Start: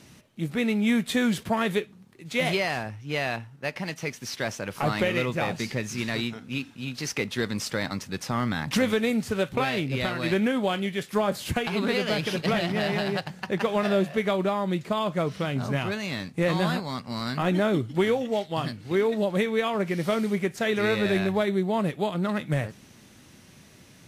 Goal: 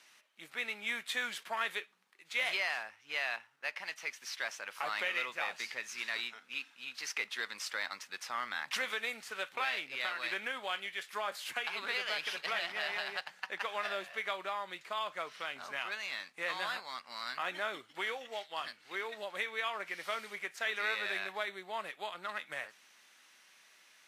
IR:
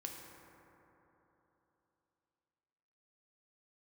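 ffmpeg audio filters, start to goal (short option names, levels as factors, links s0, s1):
-af "highpass=1400,highshelf=f=3200:g=-10"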